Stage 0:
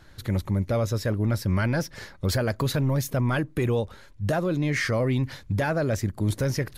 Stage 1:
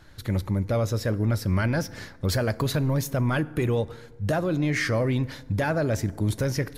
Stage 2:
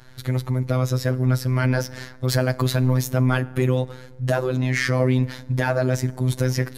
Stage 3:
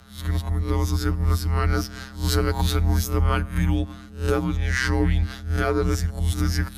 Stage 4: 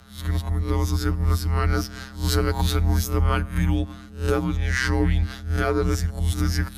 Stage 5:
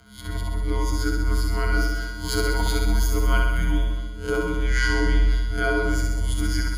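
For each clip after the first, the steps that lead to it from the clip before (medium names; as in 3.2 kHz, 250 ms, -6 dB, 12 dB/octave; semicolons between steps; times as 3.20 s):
FDN reverb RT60 1.4 s, low-frequency decay 1.1×, high-frequency decay 0.5×, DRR 16.5 dB
robot voice 128 Hz; trim +5.5 dB
reverse spectral sustain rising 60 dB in 0.33 s; frequency shift -210 Hz; trim -1 dB
no audible change
rippled EQ curve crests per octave 1.8, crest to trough 13 dB; on a send: flutter echo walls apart 11.1 m, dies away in 1.2 s; on the sum: trim -4.5 dB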